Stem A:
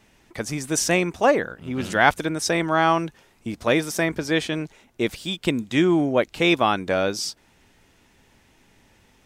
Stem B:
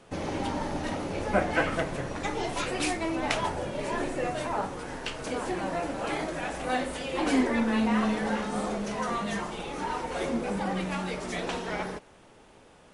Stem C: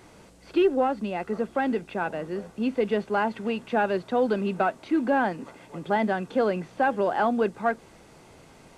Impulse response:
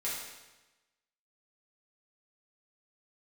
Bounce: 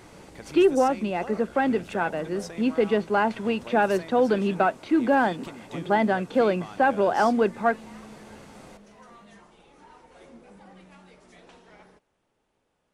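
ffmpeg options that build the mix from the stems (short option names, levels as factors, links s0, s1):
-filter_complex "[0:a]volume=0.237[s0];[1:a]volume=0.106[s1];[2:a]volume=1.33[s2];[s0][s1]amix=inputs=2:normalize=0,acompressor=threshold=0.0126:ratio=6,volume=1[s3];[s2][s3]amix=inputs=2:normalize=0"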